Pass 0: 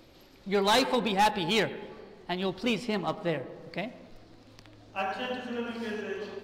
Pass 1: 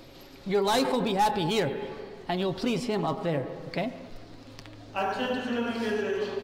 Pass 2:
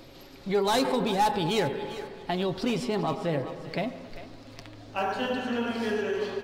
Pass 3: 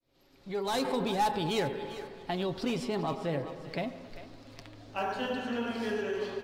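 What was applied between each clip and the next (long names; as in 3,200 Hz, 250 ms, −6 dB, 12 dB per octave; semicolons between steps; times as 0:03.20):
dynamic equaliser 2,400 Hz, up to −7 dB, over −42 dBFS, Q 0.76; comb filter 7.3 ms, depth 34%; in parallel at −3 dB: compressor whose output falls as the input rises −33 dBFS, ratio −0.5
feedback echo with a high-pass in the loop 397 ms, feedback 36%, level −13 dB
fade in at the beginning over 0.98 s; level −4 dB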